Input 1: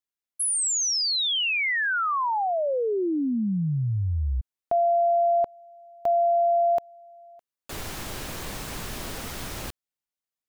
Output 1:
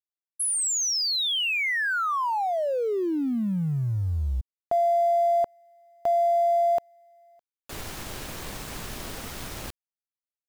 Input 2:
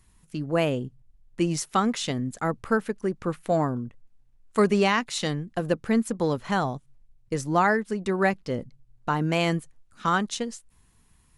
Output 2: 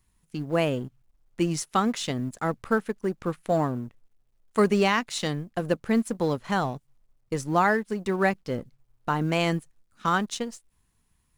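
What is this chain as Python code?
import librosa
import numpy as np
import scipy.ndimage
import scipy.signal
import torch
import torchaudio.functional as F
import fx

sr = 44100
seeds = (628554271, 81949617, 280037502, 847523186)

y = fx.law_mismatch(x, sr, coded='A')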